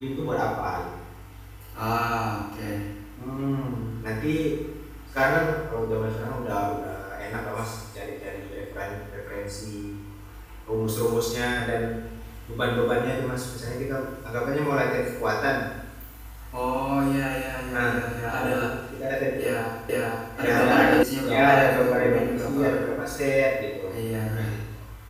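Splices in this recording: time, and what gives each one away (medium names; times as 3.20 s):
19.89 s: repeat of the last 0.47 s
21.03 s: sound stops dead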